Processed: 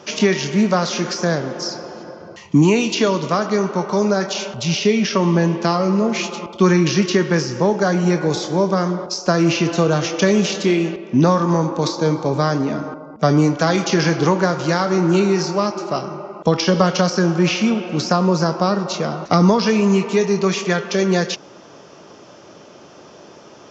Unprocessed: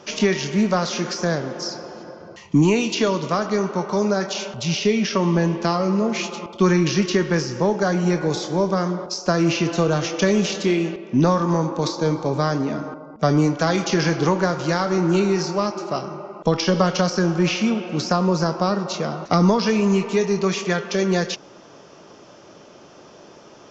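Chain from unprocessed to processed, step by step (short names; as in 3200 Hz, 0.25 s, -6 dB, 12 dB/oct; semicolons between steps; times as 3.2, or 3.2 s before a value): HPF 48 Hz; gain +3 dB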